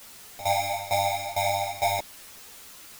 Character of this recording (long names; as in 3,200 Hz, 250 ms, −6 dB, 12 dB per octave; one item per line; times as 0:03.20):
aliases and images of a low sample rate 1,500 Hz, jitter 0%
tremolo saw down 2.2 Hz, depth 90%
a quantiser's noise floor 8 bits, dither triangular
a shimmering, thickened sound